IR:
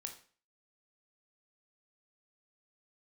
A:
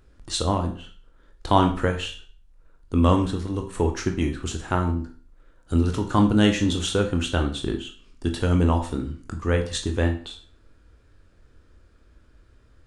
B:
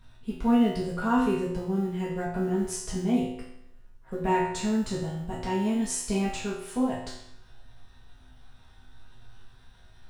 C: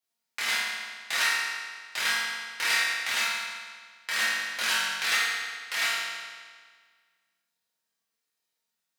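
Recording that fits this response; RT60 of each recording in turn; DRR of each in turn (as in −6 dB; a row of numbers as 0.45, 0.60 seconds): A; 0.40, 0.75, 1.7 seconds; 4.0, −7.0, −9.0 decibels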